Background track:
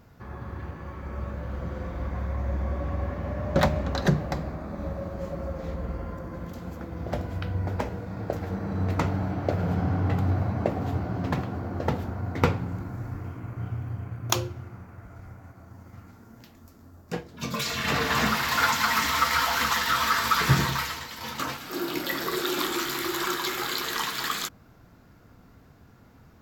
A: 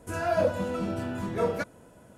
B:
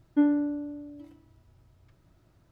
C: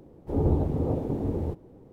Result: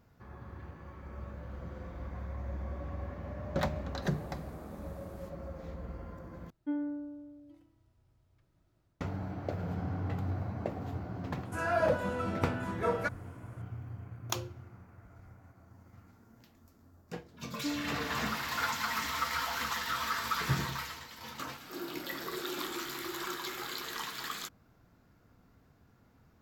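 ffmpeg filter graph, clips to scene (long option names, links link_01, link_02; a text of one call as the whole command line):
ffmpeg -i bed.wav -i cue0.wav -i cue1.wav -i cue2.wav -filter_complex "[2:a]asplit=2[link_01][link_02];[0:a]volume=-10dB[link_03];[3:a]aderivative[link_04];[link_01]dynaudnorm=framelen=180:gausssize=3:maxgain=4dB[link_05];[1:a]equalizer=frequency=1400:width_type=o:width=1.7:gain=8[link_06];[link_03]asplit=2[link_07][link_08];[link_07]atrim=end=6.504[link_09];[link_05]atrim=end=2.51,asetpts=PTS-STARTPTS,volume=-13.5dB[link_10];[link_08]atrim=start=9.006[link_11];[link_04]atrim=end=1.92,asetpts=PTS-STARTPTS,afade=type=in:duration=0.004:curve=hsin,afade=type=out:start_time=1.916:duration=0.004:curve=hsin,adelay=3750[link_12];[link_06]atrim=end=2.17,asetpts=PTS-STARTPTS,volume=-6.5dB,afade=type=in:duration=0.004:curve=hsin,afade=type=out:start_time=2.166:duration=0.004:curve=hsin,adelay=11450[link_13];[link_02]atrim=end=2.51,asetpts=PTS-STARTPTS,volume=-14dB,afade=type=in:duration=0.004:curve=hsin,afade=type=out:start_time=2.506:duration=0.004:curve=hsin,adelay=17470[link_14];[link_09][link_10]acrossfade=duration=0.004:curve1=hsin:curve2=hsin[link_15];[link_15][link_11]acrossfade=duration=0.004:curve1=hsin:curve2=hsin[link_16];[link_16][link_12][link_13][link_14]amix=inputs=4:normalize=0" out.wav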